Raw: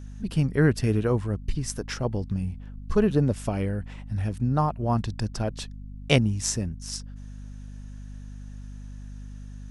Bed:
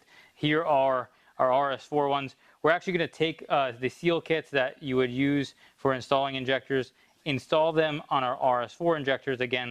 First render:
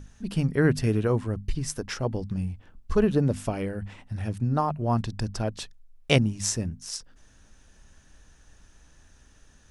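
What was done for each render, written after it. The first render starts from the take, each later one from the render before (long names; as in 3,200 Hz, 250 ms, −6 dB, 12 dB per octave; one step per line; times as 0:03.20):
mains-hum notches 50/100/150/200/250 Hz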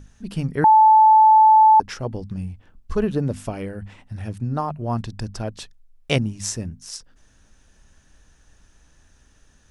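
0:00.64–0:01.80: beep over 872 Hz −8.5 dBFS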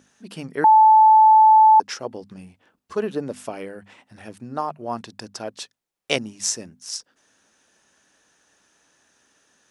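high-pass filter 320 Hz 12 dB per octave
dynamic equaliser 5,800 Hz, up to +5 dB, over −42 dBFS, Q 1.1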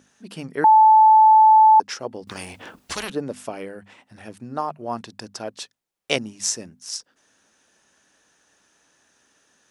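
0:02.27–0:03.10: every bin compressed towards the loudest bin 4 to 1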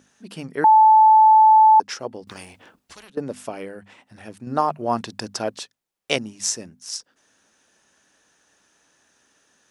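0:02.08–0:03.17: fade out quadratic, to −16.5 dB
0:04.47–0:05.59: clip gain +6 dB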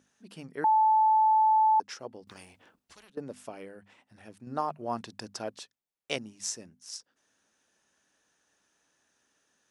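level −10.5 dB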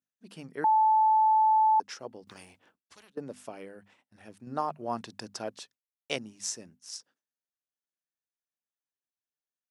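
downward expander −54 dBFS
high-pass filter 80 Hz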